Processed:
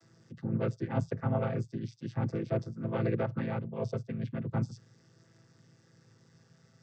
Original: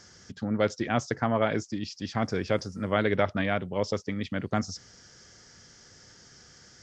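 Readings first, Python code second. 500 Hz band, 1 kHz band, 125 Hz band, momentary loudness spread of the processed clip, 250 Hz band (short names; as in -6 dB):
-7.0 dB, -9.5 dB, +1.5 dB, 8 LU, -5.0 dB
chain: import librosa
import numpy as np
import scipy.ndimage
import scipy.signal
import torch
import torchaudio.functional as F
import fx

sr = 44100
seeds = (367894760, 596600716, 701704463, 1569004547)

y = fx.chord_vocoder(x, sr, chord='minor triad', root=45)
y = F.gain(torch.from_numpy(y), -3.5).numpy()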